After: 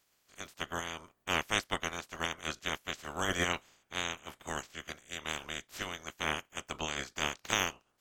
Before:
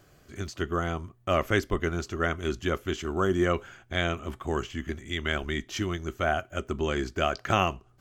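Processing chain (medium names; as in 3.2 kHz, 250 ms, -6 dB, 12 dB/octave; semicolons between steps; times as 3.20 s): spectral peaks clipped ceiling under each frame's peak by 29 dB; upward expansion 1.5:1, over -41 dBFS; trim -5.5 dB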